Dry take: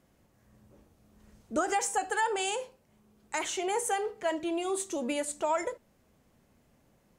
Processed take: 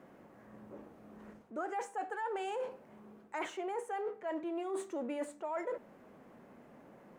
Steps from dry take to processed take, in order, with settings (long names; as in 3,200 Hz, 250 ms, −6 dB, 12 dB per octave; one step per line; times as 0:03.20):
mu-law and A-law mismatch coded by mu
three-way crossover with the lows and the highs turned down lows −21 dB, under 180 Hz, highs −19 dB, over 2,100 Hz
reversed playback
downward compressor 12 to 1, threshold −39 dBFS, peak gain reduction 16 dB
reversed playback
level +4 dB